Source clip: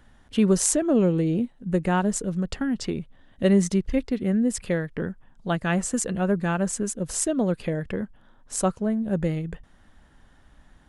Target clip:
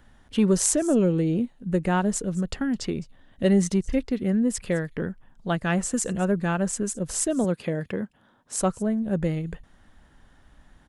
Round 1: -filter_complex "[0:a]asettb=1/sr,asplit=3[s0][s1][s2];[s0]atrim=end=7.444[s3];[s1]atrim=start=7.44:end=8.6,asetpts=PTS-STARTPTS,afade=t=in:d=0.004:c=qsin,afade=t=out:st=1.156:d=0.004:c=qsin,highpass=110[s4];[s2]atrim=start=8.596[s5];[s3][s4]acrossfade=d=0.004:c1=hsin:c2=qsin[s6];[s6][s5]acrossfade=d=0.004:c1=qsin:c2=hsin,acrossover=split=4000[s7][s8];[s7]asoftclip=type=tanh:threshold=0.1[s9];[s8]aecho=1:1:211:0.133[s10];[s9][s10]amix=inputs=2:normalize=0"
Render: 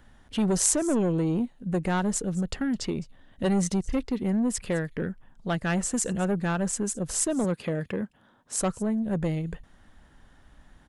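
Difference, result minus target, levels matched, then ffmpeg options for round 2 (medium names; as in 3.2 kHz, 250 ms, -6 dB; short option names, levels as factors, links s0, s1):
saturation: distortion +16 dB
-filter_complex "[0:a]asettb=1/sr,asplit=3[s0][s1][s2];[s0]atrim=end=7.444[s3];[s1]atrim=start=7.44:end=8.6,asetpts=PTS-STARTPTS,afade=t=in:d=0.004:c=qsin,afade=t=out:st=1.156:d=0.004:c=qsin,highpass=110[s4];[s2]atrim=start=8.596[s5];[s3][s4]acrossfade=d=0.004:c1=hsin:c2=qsin[s6];[s6][s5]acrossfade=d=0.004:c1=qsin:c2=hsin,acrossover=split=4000[s7][s8];[s7]asoftclip=type=tanh:threshold=0.376[s9];[s8]aecho=1:1:211:0.133[s10];[s9][s10]amix=inputs=2:normalize=0"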